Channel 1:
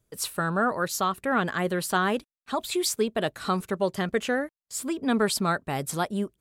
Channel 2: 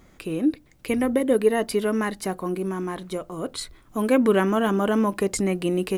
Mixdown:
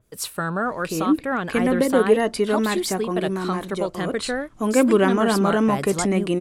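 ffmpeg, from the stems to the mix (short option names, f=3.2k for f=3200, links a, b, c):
-filter_complex "[0:a]alimiter=limit=-17dB:level=0:latency=1:release=321,adynamicequalizer=threshold=0.00794:dfrequency=3000:dqfactor=0.7:tfrequency=3000:tqfactor=0.7:attack=5:release=100:ratio=0.375:range=2.5:mode=cutabove:tftype=highshelf,volume=2dB[a];[1:a]lowpass=f=9.9k:w=0.5412,lowpass=f=9.9k:w=1.3066,adelay=650,volume=2dB[b];[a][b]amix=inputs=2:normalize=0,acompressor=mode=upward:threshold=-58dB:ratio=2.5"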